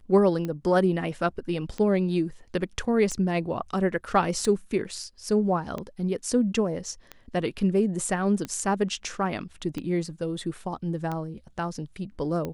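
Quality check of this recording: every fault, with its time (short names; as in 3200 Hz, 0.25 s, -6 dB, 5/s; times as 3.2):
tick 45 rpm -19 dBFS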